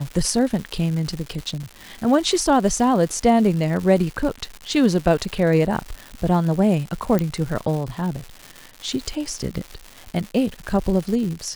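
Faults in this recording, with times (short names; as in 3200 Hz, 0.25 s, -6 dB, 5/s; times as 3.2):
crackle 280/s -28 dBFS
1.63 gap 4.9 ms
5.19 gap 4 ms
7.19 pop -9 dBFS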